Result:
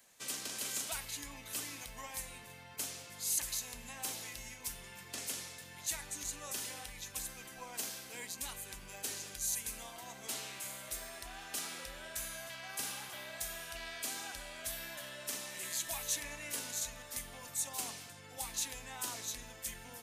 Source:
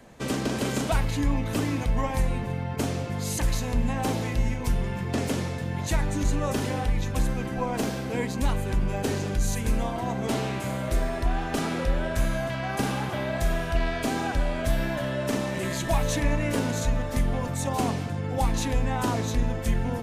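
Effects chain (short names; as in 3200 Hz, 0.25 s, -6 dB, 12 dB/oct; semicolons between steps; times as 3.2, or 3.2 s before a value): pre-emphasis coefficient 0.97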